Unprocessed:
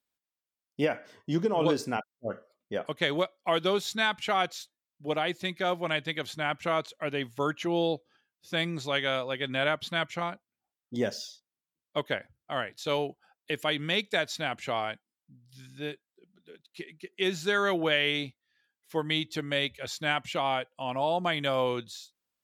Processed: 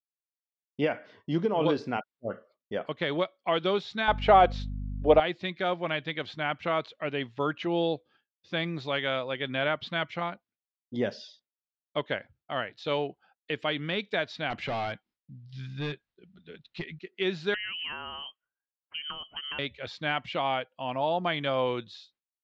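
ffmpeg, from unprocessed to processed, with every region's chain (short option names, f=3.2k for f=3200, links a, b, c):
-filter_complex "[0:a]asettb=1/sr,asplit=3[a][b][c];[a]atrim=end=4.084[d];[b]atrim=start=4.08:end=5.2,asetpts=PTS-STARTPTS,afade=t=in:d=0.004:c=qsin,afade=t=out:st=1.116:d=0.004:c=qsin,equalizer=f=590:w=0.7:g=13,aeval=exprs='val(0)+0.0224*(sin(2*PI*50*n/s)+sin(2*PI*2*50*n/s)/2+sin(2*PI*3*50*n/s)/3+sin(2*PI*4*50*n/s)/4+sin(2*PI*5*50*n/s)/5)':c=same[e];[c]atrim=start=5.196[f];[d][e]acrossfade=d=0.004:c1=hsin:c2=qsin[g];[g][f]acrossfade=d=0.004:c1=qsin:c2=hsin,asettb=1/sr,asplit=3[h][i][j];[h]atrim=end=14.504[k];[i]atrim=start=14.5:end=16.99,asetpts=PTS-STARTPTS,afade=t=in:d=0.004:c=qsin,afade=t=out:st=2.486:d=0.004:c=qsin,asubboost=boost=10:cutoff=130,acontrast=61,volume=28dB,asoftclip=hard,volume=-28dB[l];[j]atrim=start=16.986[m];[k][l]acrossfade=d=0.004:c1=hsin:c2=qsin[n];[n][m]acrossfade=d=0.004:c1=qsin:c2=hsin,asettb=1/sr,asplit=3[o][p][q];[o]atrim=end=17.544[r];[p]atrim=start=17.54:end=19.59,asetpts=PTS-STARTPTS,afade=t=in:d=0.004:c=qsin,afade=t=out:st=2.046:d=0.004:c=qsin,acompressor=threshold=-32dB:ratio=8:attack=3.2:release=140:knee=1:detection=peak,lowpass=f=2.8k:t=q:w=0.5098,lowpass=f=2.8k:t=q:w=0.6013,lowpass=f=2.8k:t=q:w=0.9,lowpass=f=2.8k:t=q:w=2.563,afreqshift=-3300[s];[q]atrim=start=19.586[t];[r][s]acrossfade=d=0.004:c1=hsin:c2=qsin[u];[u][t]acrossfade=d=0.004:c1=qsin:c2=hsin,agate=range=-33dB:threshold=-57dB:ratio=3:detection=peak,deesser=0.85,lowpass=f=4.3k:w=0.5412,lowpass=f=4.3k:w=1.3066"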